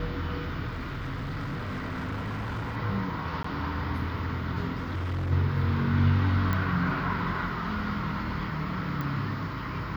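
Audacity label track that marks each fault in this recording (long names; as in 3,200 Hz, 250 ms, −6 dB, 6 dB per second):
0.680000	2.770000	clipping −29.5 dBFS
3.430000	3.440000	drop-out 14 ms
4.760000	5.320000	clipping −27.5 dBFS
6.530000	6.530000	click −16 dBFS
9.010000	9.010000	click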